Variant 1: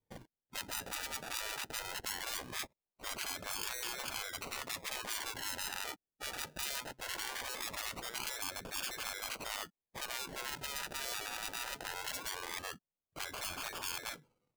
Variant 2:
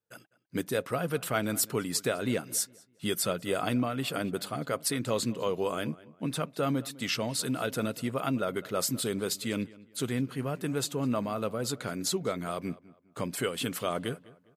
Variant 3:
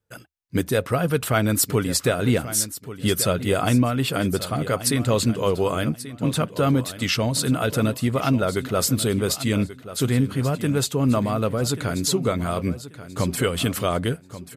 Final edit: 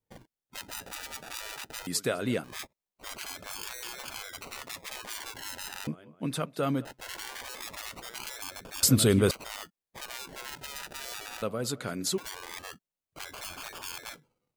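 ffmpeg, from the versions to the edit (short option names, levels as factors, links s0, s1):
-filter_complex "[1:a]asplit=3[s0][s1][s2];[0:a]asplit=5[s3][s4][s5][s6][s7];[s3]atrim=end=1.872[s8];[s0]atrim=start=1.868:end=2.442[s9];[s4]atrim=start=2.438:end=5.872[s10];[s1]atrim=start=5.868:end=6.852[s11];[s5]atrim=start=6.848:end=8.832[s12];[2:a]atrim=start=8.828:end=9.312[s13];[s6]atrim=start=9.308:end=11.422[s14];[s2]atrim=start=11.418:end=12.182[s15];[s7]atrim=start=12.178[s16];[s8][s9]acrossfade=d=0.004:c1=hsin:c2=hsin[s17];[s17][s10]acrossfade=d=0.004:c1=hsin:c2=hsin[s18];[s18][s11]acrossfade=d=0.004:c1=hsin:c2=hsin[s19];[s19][s12]acrossfade=d=0.004:c1=hsin:c2=hsin[s20];[s20][s13]acrossfade=d=0.004:c1=hsin:c2=hsin[s21];[s21][s14]acrossfade=d=0.004:c1=hsin:c2=hsin[s22];[s22][s15]acrossfade=d=0.004:c1=hsin:c2=hsin[s23];[s23][s16]acrossfade=d=0.004:c1=hsin:c2=hsin"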